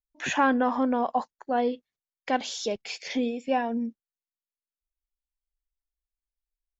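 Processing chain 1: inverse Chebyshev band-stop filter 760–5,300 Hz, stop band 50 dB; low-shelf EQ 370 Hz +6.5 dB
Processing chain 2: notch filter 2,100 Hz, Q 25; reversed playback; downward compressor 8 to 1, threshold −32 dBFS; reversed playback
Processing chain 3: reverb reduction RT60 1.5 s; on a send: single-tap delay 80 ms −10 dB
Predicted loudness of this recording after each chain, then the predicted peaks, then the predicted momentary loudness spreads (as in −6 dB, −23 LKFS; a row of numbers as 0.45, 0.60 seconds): −28.5, −37.0, −28.5 LKFS; −15.5, −19.5, −11.0 dBFS; 14, 5, 10 LU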